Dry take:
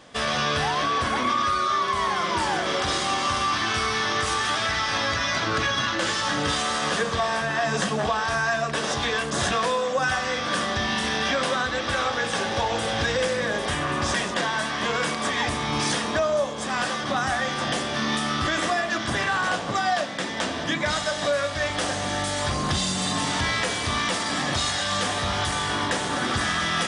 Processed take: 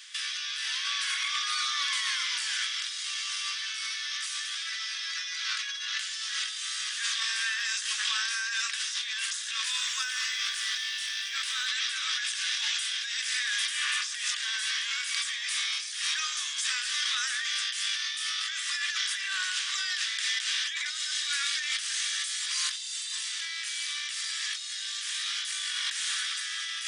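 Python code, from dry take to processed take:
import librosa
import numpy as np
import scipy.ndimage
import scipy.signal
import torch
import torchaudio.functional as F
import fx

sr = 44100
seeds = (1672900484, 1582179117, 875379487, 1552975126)

y = scipy.signal.sosfilt(scipy.signal.bessel(8, 2800.0, 'highpass', norm='mag', fs=sr, output='sos'), x)
y = fx.over_compress(y, sr, threshold_db=-38.0, ratio=-1.0)
y = fx.echo_crushed(y, sr, ms=229, feedback_pct=55, bits=9, wet_db=-12.5, at=(9.42, 11.67))
y = y * librosa.db_to_amplitude(5.5)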